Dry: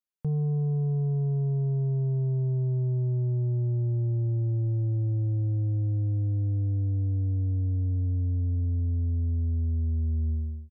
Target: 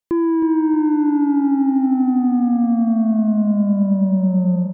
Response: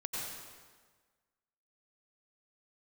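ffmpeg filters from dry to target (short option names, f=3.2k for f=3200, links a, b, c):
-af "bandreject=f=590:w=12,asetrate=99666,aresample=44100,aecho=1:1:315|630|945|1260|1575|1890:0.355|0.192|0.103|0.0559|0.0302|0.0163,volume=9dB"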